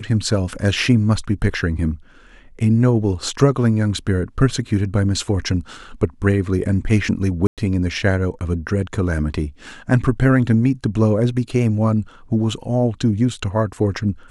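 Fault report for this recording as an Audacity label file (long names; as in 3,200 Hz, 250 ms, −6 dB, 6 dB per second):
7.470000	7.580000	drop-out 107 ms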